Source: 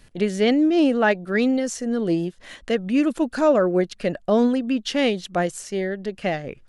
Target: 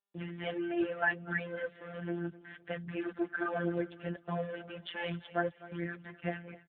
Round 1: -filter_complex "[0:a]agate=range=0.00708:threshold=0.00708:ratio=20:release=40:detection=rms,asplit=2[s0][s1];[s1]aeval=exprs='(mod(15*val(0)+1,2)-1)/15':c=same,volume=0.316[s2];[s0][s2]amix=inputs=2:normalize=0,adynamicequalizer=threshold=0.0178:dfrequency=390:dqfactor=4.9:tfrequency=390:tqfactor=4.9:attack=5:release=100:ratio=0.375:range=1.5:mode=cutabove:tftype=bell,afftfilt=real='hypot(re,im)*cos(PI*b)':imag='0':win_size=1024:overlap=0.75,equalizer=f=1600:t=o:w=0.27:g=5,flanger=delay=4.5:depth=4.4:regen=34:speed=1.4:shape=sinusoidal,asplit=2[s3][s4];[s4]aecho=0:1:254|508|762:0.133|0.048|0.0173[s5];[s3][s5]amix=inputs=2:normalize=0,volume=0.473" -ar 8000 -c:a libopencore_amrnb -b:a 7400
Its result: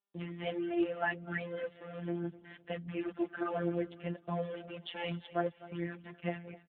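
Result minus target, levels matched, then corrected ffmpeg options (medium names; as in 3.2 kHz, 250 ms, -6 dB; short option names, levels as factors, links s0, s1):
2 kHz band -4.0 dB
-filter_complex "[0:a]agate=range=0.00708:threshold=0.00708:ratio=20:release=40:detection=rms,asplit=2[s0][s1];[s1]aeval=exprs='(mod(15*val(0)+1,2)-1)/15':c=same,volume=0.316[s2];[s0][s2]amix=inputs=2:normalize=0,adynamicequalizer=threshold=0.0178:dfrequency=390:dqfactor=4.9:tfrequency=390:tqfactor=4.9:attack=5:release=100:ratio=0.375:range=1.5:mode=cutabove:tftype=bell,afftfilt=real='hypot(re,im)*cos(PI*b)':imag='0':win_size=1024:overlap=0.75,equalizer=f=1600:t=o:w=0.27:g=13.5,flanger=delay=4.5:depth=4.4:regen=34:speed=1.4:shape=sinusoidal,asplit=2[s3][s4];[s4]aecho=0:1:254|508|762:0.133|0.048|0.0173[s5];[s3][s5]amix=inputs=2:normalize=0,volume=0.473" -ar 8000 -c:a libopencore_amrnb -b:a 7400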